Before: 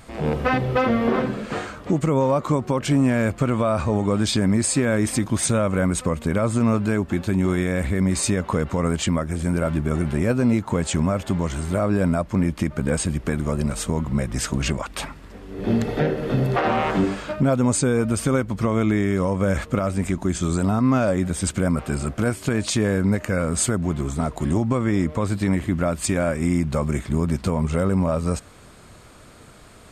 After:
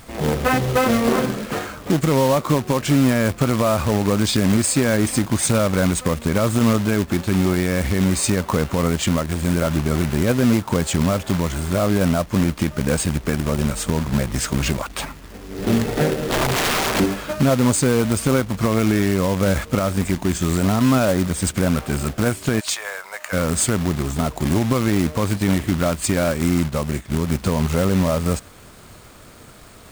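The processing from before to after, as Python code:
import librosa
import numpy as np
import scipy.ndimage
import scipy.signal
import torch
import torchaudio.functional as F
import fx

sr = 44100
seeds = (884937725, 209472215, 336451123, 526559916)

y = fx.overflow_wrap(x, sr, gain_db=17.0, at=(16.29, 17.0))
y = fx.cheby2_highpass(y, sr, hz=270.0, order=4, stop_db=50, at=(22.59, 23.32), fade=0.02)
y = fx.quant_companded(y, sr, bits=4)
y = fx.upward_expand(y, sr, threshold_db=-32.0, expansion=1.5, at=(26.67, 27.29), fade=0.02)
y = y * 10.0 ** (2.0 / 20.0)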